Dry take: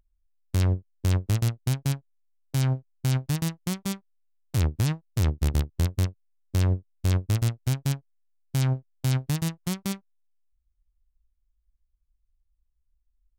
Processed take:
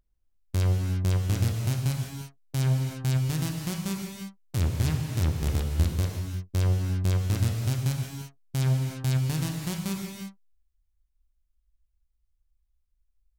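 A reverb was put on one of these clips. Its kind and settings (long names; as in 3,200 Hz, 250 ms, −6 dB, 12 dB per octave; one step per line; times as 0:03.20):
reverb whose tail is shaped and stops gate 380 ms flat, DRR 1 dB
level −3 dB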